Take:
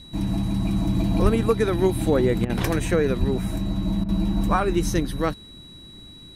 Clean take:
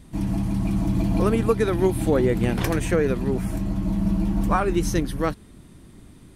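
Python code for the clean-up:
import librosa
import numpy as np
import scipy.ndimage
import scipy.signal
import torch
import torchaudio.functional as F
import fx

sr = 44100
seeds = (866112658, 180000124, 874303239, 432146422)

y = fx.fix_declip(x, sr, threshold_db=-8.0)
y = fx.notch(y, sr, hz=3900.0, q=30.0)
y = fx.fix_deplosive(y, sr, at_s=(1.22, 3.19))
y = fx.fix_interpolate(y, sr, at_s=(2.45, 4.04), length_ms=45.0)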